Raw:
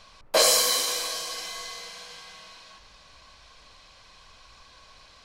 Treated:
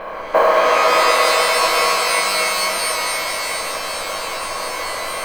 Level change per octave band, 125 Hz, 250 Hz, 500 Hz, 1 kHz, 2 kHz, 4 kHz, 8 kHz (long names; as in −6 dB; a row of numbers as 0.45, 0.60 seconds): can't be measured, +13.5 dB, +14.0 dB, +19.5 dB, +18.0 dB, +7.0 dB, +4.5 dB